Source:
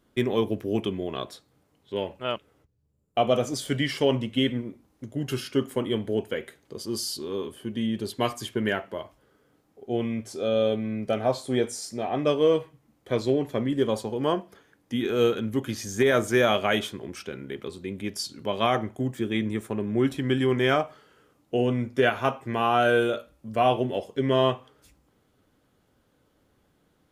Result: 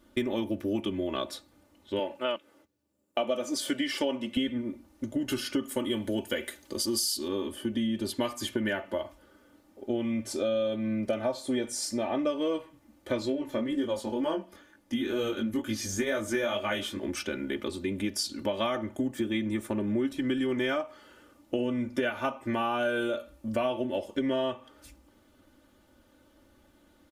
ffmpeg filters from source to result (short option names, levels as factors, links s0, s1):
-filter_complex "[0:a]asettb=1/sr,asplit=3[s0][s1][s2];[s0]atrim=end=1.994[s3];[s1]atrim=start=1.99:end=4.37,asetpts=PTS-STARTPTS,afade=t=in:d=0.004:c=qsin,afade=t=out:st=2.376:d=0.004:c=qsin,highpass=230[s4];[s2]atrim=start=4.366[s5];[s3][s4]acrossfade=d=0.004:c1=hsin:c2=qsin[s6];[s6][s5]acrossfade=d=0.004:c1=qsin:c2=hsin,asettb=1/sr,asplit=3[s7][s8][s9];[s7]atrim=end=5.634[s10];[s8]atrim=start=5.63:end=7.28,asetpts=PTS-STARTPTS,afade=t=in:d=0.004:c=qsin,afade=t=out:st=1.646:d=0.004:c=qsin,highshelf=f=3500:g=9[s11];[s9]atrim=start=7.276[s12];[s10][s11]acrossfade=d=0.004:c1=hsin:c2=qsin[s13];[s13][s12]acrossfade=d=0.004:c1=qsin:c2=hsin,asplit=3[s14][s15][s16];[s14]afade=t=out:st=13.25:d=0.02[s17];[s15]flanger=delay=18.5:depth=3.7:speed=2.1,afade=t=in:st=13.25:d=0.02,afade=t=out:st=17.01:d=0.02[s18];[s16]afade=t=in:st=17.01:d=0.02[s19];[s17][s18][s19]amix=inputs=3:normalize=0,aecho=1:1:3.4:0.82,acompressor=threshold=0.0316:ratio=5,volume=1.41"